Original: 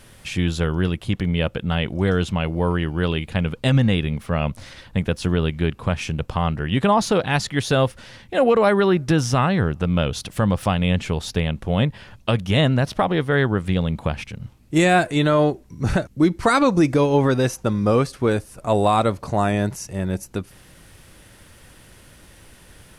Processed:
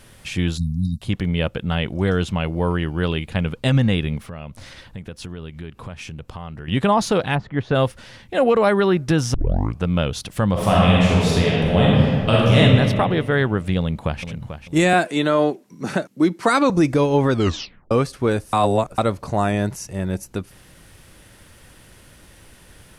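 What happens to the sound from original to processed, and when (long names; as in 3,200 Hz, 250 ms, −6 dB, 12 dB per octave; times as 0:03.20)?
0:00.58–0:01.02: time-frequency box erased 270–3,700 Hz
0:04.27–0:06.68: downward compressor 3 to 1, threshold −33 dBFS
0:07.34–0:07.74: low-pass filter 1,000 Hz → 1,900 Hz
0:09.34: tape start 0.47 s
0:10.52–0:12.59: thrown reverb, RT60 2 s, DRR −6 dB
0:13.78–0:14.24: delay throw 440 ms, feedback 30%, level −10.5 dB
0:14.93–0:16.70: high-pass filter 180 Hz 24 dB per octave
0:17.32: tape stop 0.59 s
0:18.53–0:18.98: reverse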